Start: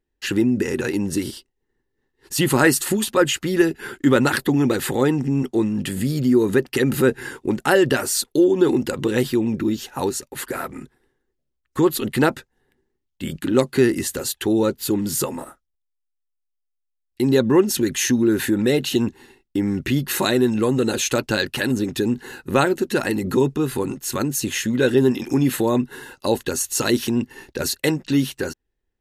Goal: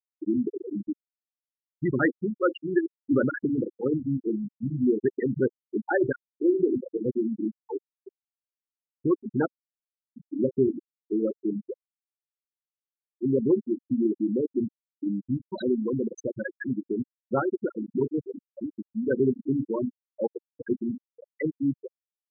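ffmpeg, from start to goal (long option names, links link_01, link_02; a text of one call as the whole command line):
ffmpeg -i in.wav -af "bandreject=frequency=48.16:width_type=h:width=4,bandreject=frequency=96.32:width_type=h:width=4,bandreject=frequency=144.48:width_type=h:width=4,bandreject=frequency=192.64:width_type=h:width=4,bandreject=frequency=240.8:width_type=h:width=4,bandreject=frequency=288.96:width_type=h:width=4,bandreject=frequency=337.12:width_type=h:width=4,bandreject=frequency=385.28:width_type=h:width=4,bandreject=frequency=433.44:width_type=h:width=4,bandreject=frequency=481.6:width_type=h:width=4,bandreject=frequency=529.76:width_type=h:width=4,bandreject=frequency=577.92:width_type=h:width=4,bandreject=frequency=626.08:width_type=h:width=4,bandreject=frequency=674.24:width_type=h:width=4,afftfilt=real='re*gte(hypot(re,im),0.501)':imag='im*gte(hypot(re,im),0.501)':win_size=1024:overlap=0.75,atempo=1.3,volume=-5.5dB" out.wav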